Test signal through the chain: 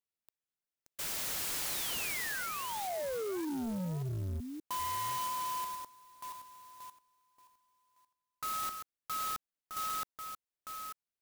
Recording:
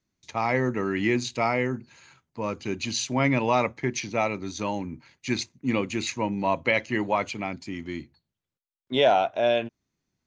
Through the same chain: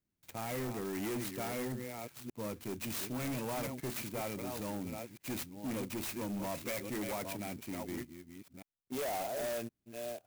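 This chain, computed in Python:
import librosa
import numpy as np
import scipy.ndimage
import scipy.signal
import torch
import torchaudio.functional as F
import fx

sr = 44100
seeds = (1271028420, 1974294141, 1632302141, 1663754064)

y = fx.reverse_delay(x, sr, ms=575, wet_db=-10.0)
y = fx.peak_eq(y, sr, hz=1100.0, db=-7.5, octaves=1.2)
y = np.clip(y, -10.0 ** (-28.0 / 20.0), 10.0 ** (-28.0 / 20.0))
y = fx.clock_jitter(y, sr, seeds[0], jitter_ms=0.068)
y = F.gain(torch.from_numpy(y), -6.5).numpy()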